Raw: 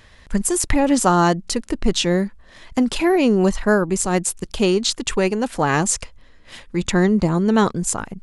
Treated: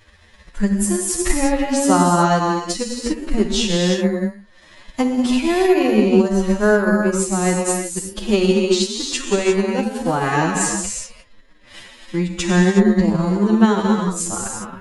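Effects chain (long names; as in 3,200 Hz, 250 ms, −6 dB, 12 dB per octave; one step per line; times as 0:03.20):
reverb whose tail is shaped and stops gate 220 ms flat, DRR −1 dB
phase-vocoder stretch with locked phases 1.8×
transient designer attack +5 dB, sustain −4 dB
level −3 dB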